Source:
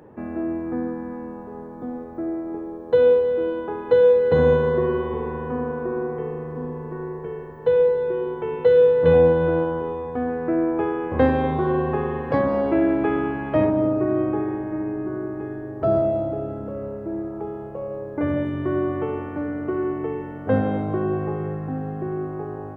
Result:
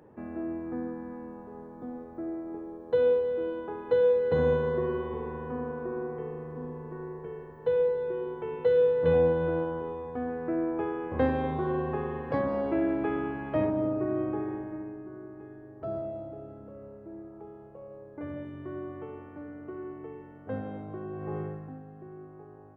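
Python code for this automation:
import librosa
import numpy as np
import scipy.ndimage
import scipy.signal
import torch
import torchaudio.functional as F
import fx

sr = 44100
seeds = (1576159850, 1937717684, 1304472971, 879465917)

y = fx.gain(x, sr, db=fx.line((14.58, -8.0), (15.04, -15.0), (21.13, -15.0), (21.37, -6.0), (21.85, -18.0)))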